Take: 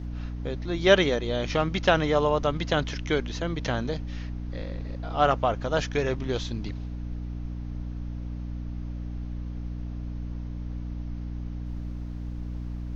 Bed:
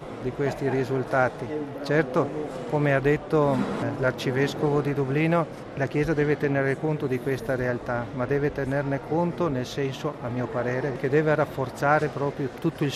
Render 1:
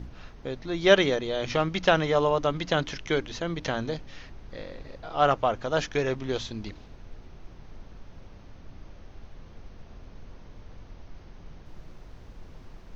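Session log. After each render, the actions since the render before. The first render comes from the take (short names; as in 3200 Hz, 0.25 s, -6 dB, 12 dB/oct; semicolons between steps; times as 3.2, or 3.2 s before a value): notches 60/120/180/240/300 Hz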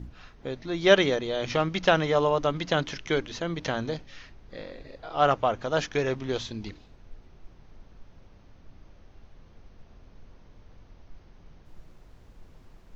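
noise print and reduce 6 dB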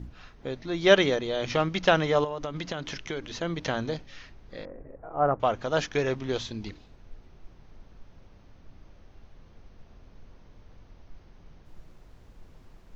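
2.24–3.33 compressor, threshold -29 dBFS; 4.65–5.4 Gaussian blur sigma 6.2 samples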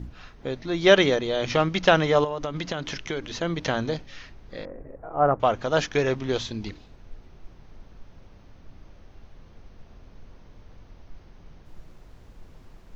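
gain +3.5 dB; limiter -3 dBFS, peak gain reduction 2 dB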